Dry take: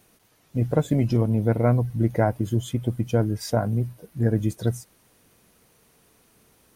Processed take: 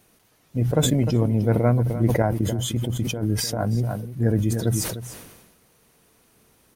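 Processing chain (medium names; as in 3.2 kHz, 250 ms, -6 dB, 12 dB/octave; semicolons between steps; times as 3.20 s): 2.22–3.78 s: compressor with a negative ratio -23 dBFS, ratio -0.5; delay 303 ms -13.5 dB; decay stretcher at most 47 dB/s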